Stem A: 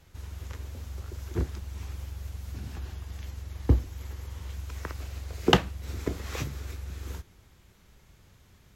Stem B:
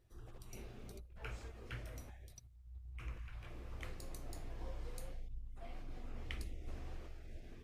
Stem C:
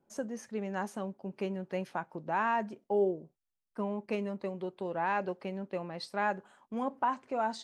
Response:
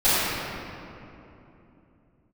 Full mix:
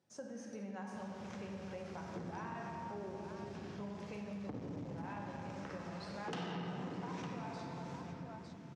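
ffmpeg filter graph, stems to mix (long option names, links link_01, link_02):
-filter_complex "[0:a]highshelf=frequency=4000:gain=-9.5,adelay=800,volume=-5dB,asplit=3[link_01][link_02][link_03];[link_02]volume=-16.5dB[link_04];[link_03]volume=-16.5dB[link_05];[1:a]acompressor=threshold=-53dB:ratio=6,volume=-6.5dB,asplit=2[link_06][link_07];[link_07]volume=-15dB[link_08];[2:a]volume=-10.5dB,asplit=3[link_09][link_10][link_11];[link_10]volume=-18.5dB[link_12];[link_11]volume=-10.5dB[link_13];[3:a]atrim=start_sample=2205[link_14];[link_04][link_08][link_12]amix=inputs=3:normalize=0[link_15];[link_15][link_14]afir=irnorm=-1:irlink=0[link_16];[link_05][link_13]amix=inputs=2:normalize=0,aecho=0:1:906:1[link_17];[link_01][link_06][link_09][link_16][link_17]amix=inputs=5:normalize=0,asoftclip=type=tanh:threshold=-25.5dB,highpass=frequency=140:width=0.5412,highpass=frequency=140:width=1.3066,equalizer=frequency=170:width_type=q:width=4:gain=6,equalizer=frequency=360:width_type=q:width=4:gain=-5,equalizer=frequency=5500:width_type=q:width=4:gain=5,lowpass=frequency=8800:width=0.5412,lowpass=frequency=8800:width=1.3066,acompressor=threshold=-43dB:ratio=3"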